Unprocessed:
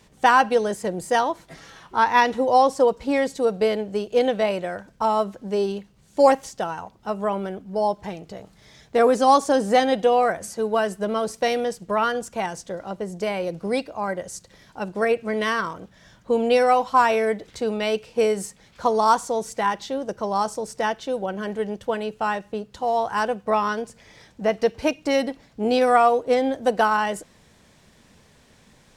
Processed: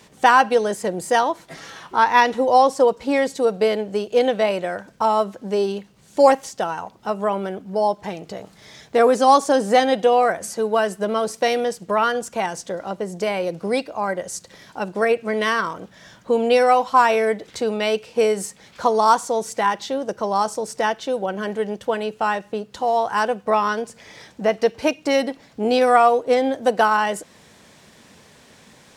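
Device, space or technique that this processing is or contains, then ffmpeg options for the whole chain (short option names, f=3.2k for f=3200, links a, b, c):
parallel compression: -filter_complex "[0:a]asplit=2[a][b];[b]acompressor=threshold=-36dB:ratio=6,volume=-2dB[c];[a][c]amix=inputs=2:normalize=0,highpass=f=190:p=1,volume=2dB"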